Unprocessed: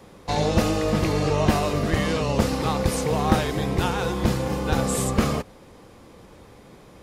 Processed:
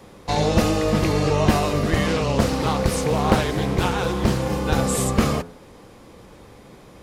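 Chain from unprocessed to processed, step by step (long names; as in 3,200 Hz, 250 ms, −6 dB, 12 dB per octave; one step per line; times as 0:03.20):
hum removal 85.7 Hz, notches 20
0:02.06–0:04.42: highs frequency-modulated by the lows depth 0.58 ms
level +2.5 dB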